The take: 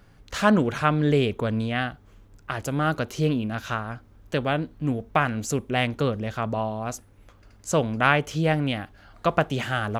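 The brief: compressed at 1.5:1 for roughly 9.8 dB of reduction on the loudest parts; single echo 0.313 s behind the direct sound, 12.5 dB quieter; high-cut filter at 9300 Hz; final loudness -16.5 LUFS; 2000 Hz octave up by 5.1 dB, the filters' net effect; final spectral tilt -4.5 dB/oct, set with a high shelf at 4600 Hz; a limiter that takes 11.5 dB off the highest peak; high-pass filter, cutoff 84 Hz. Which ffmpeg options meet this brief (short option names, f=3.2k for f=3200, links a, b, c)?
-af "highpass=84,lowpass=9.3k,equalizer=f=2k:t=o:g=5.5,highshelf=f=4.6k:g=8.5,acompressor=threshold=-40dB:ratio=1.5,alimiter=limit=-21dB:level=0:latency=1,aecho=1:1:313:0.237,volume=17.5dB"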